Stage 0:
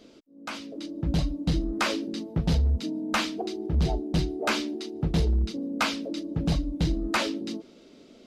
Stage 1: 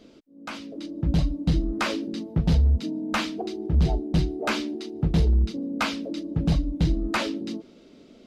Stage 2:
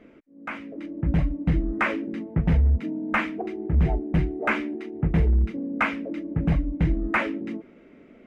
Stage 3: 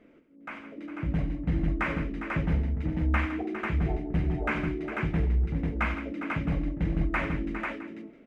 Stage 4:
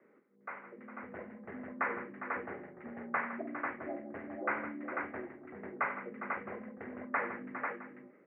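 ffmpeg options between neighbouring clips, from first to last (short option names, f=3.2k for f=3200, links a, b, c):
-af "bass=f=250:g=4,treble=f=4k:g=-3"
-af "highshelf=f=3k:t=q:w=3:g=-13"
-af "aecho=1:1:51|92|160|406|493|662:0.266|0.251|0.251|0.299|0.631|0.126,volume=-6.5dB"
-af "highpass=f=410:t=q:w=0.5412,highpass=f=410:t=q:w=1.307,lowpass=f=2.1k:t=q:w=0.5176,lowpass=f=2.1k:t=q:w=0.7071,lowpass=f=2.1k:t=q:w=1.932,afreqshift=-78,volume=-2dB"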